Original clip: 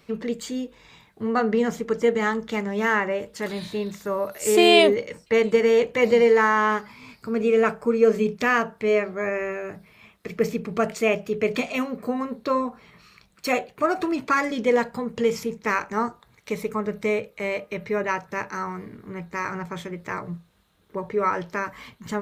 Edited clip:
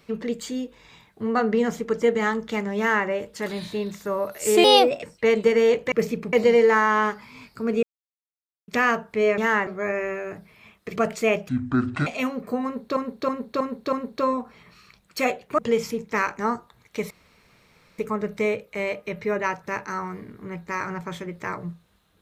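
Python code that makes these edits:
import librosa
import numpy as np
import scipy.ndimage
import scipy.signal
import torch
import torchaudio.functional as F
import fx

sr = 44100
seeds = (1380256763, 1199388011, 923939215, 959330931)

y = fx.edit(x, sr, fx.duplicate(start_s=2.78, length_s=0.29, to_s=9.05),
    fx.speed_span(start_s=4.64, length_s=0.47, speed=1.21),
    fx.silence(start_s=7.5, length_s=0.85),
    fx.move(start_s=10.34, length_s=0.41, to_s=6.0),
    fx.speed_span(start_s=11.28, length_s=0.34, speed=0.59),
    fx.repeat(start_s=12.2, length_s=0.32, count=5),
    fx.cut(start_s=13.86, length_s=1.25),
    fx.insert_room_tone(at_s=16.63, length_s=0.88), tone=tone)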